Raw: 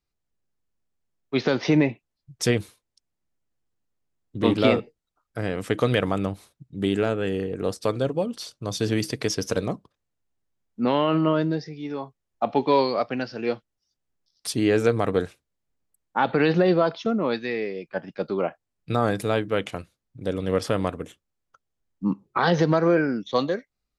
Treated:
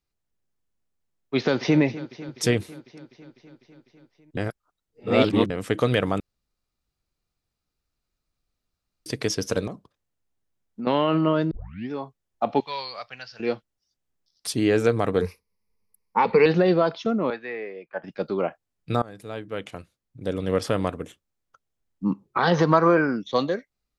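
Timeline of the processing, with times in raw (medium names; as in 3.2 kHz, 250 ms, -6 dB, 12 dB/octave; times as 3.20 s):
1.36–1.80 s: echo throw 250 ms, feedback 75%, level -16 dB
4.37–5.50 s: reverse
6.20–9.06 s: room tone
9.67–10.87 s: compression 4:1, threshold -30 dBFS
11.51 s: tape start 0.40 s
12.60–13.40 s: amplifier tone stack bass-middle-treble 10-0-10
15.21–16.46 s: rippled EQ curve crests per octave 0.86, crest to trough 15 dB
17.30–18.04 s: three-band isolator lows -13 dB, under 470 Hz, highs -22 dB, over 2.5 kHz
19.02–20.40 s: fade in, from -23.5 dB
22.51–23.16 s: peaking EQ 1.1 kHz +12 dB 0.58 oct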